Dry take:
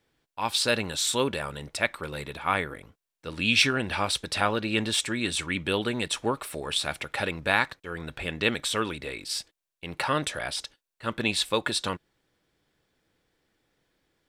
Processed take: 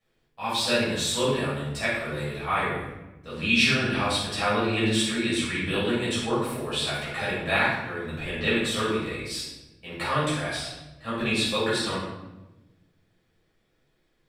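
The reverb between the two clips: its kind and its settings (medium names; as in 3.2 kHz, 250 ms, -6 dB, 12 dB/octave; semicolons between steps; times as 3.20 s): simulated room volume 460 m³, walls mixed, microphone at 6 m; trim -12 dB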